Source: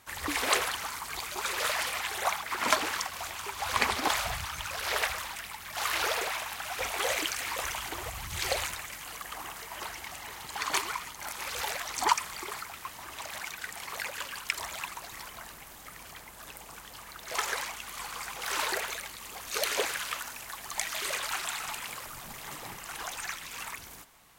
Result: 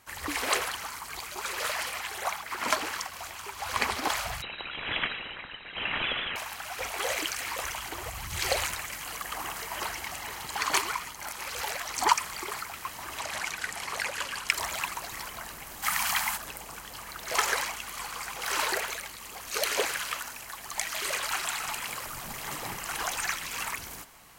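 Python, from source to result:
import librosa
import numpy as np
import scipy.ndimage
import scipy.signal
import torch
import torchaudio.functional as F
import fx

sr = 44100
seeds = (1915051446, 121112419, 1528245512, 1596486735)

y = fx.freq_invert(x, sr, carrier_hz=3900, at=(4.42, 6.36))
y = fx.lowpass(y, sr, hz=11000.0, slope=12, at=(13.2, 14.5))
y = fx.curve_eq(y, sr, hz=(150.0, 220.0, 450.0, 800.0), db=(0, 5, -14, 13), at=(15.82, 16.36), fade=0.02)
y = fx.notch(y, sr, hz=3600.0, q=17.0)
y = fx.rider(y, sr, range_db=10, speed_s=2.0)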